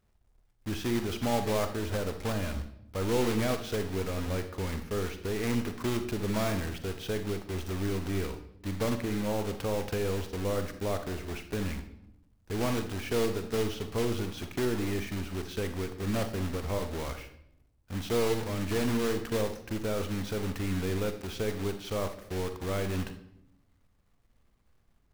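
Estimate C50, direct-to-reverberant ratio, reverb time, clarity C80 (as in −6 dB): 9.5 dB, 8.0 dB, 0.75 s, 13.0 dB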